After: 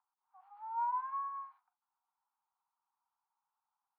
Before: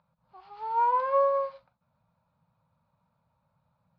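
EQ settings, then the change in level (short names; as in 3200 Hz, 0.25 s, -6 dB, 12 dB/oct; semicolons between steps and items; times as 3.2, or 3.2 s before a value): Chebyshev high-pass 730 Hz, order 10; LPF 1300 Hz 12 dB/oct; air absorption 70 m; -8.0 dB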